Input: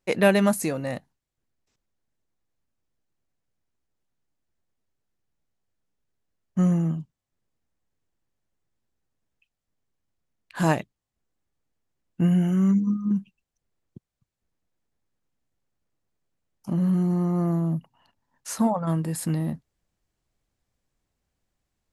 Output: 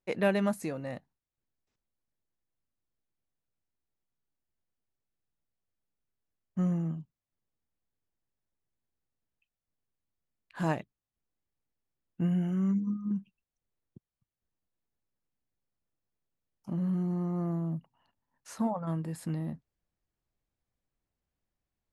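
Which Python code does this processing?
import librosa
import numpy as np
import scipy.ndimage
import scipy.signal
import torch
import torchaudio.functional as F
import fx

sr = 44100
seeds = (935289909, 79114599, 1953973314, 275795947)

y = fx.high_shelf(x, sr, hz=5300.0, db=-10.0)
y = y * 10.0 ** (-8.0 / 20.0)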